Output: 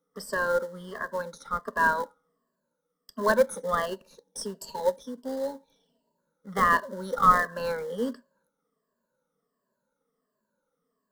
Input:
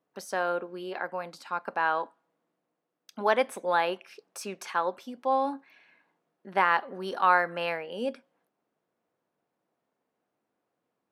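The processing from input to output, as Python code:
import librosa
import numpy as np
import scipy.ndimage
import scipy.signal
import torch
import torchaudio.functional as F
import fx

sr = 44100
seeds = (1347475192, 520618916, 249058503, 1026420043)

p1 = fx.spec_ripple(x, sr, per_octave=1.4, drift_hz=-1.4, depth_db=20)
p2 = fx.spec_erase(p1, sr, start_s=3.87, length_s=2.31, low_hz=990.0, high_hz=2300.0)
p3 = fx.sample_hold(p2, sr, seeds[0], rate_hz=1300.0, jitter_pct=20)
p4 = p2 + F.gain(torch.from_numpy(p3), -12.0).numpy()
y = fx.fixed_phaser(p4, sr, hz=500.0, stages=8)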